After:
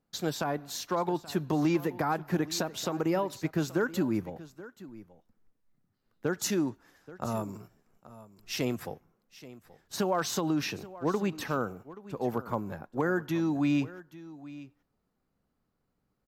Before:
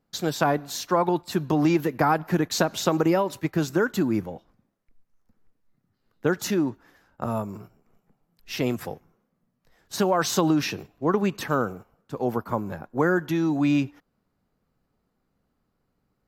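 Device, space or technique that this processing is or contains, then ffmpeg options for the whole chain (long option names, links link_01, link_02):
limiter into clipper: -filter_complex "[0:a]alimiter=limit=-12dB:level=0:latency=1:release=279,asoftclip=type=hard:threshold=-13.5dB,asettb=1/sr,asplit=3[link_01][link_02][link_03];[link_01]atrim=end=6.384[link_04];[link_02]atrim=start=6.38:end=8.65,asetpts=PTS-STARTPTS,afade=type=in:duration=0.004:curve=qsin,afade=type=out:start_time=2.266:duration=0.004:curve=qsin,equalizer=frequency=7900:width_type=o:width=1.6:gain=7.5[link_05];[link_03]atrim=start=8.646[link_06];[link_04][link_05]acrossfade=duration=0.004:curve1=hsin:curve2=qsin[link_07];[link_07][link_06]acrossfade=duration=0.004:curve1=qsin:curve2=hsin,aecho=1:1:829:0.133,volume=-5dB"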